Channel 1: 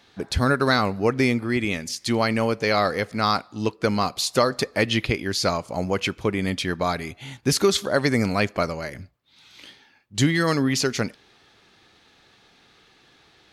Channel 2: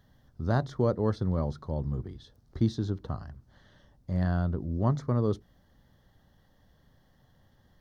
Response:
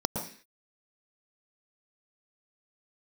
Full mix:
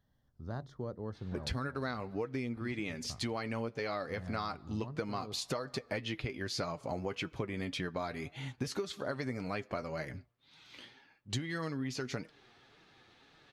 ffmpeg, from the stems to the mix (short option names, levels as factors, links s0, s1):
-filter_complex "[0:a]aemphasis=mode=reproduction:type=cd,flanger=delay=6.1:depth=2.6:regen=46:speed=1.8:shape=triangular,adelay=1150,volume=0.891[s0];[1:a]volume=0.224[s1];[s0][s1]amix=inputs=2:normalize=0,acompressor=threshold=0.0224:ratio=12"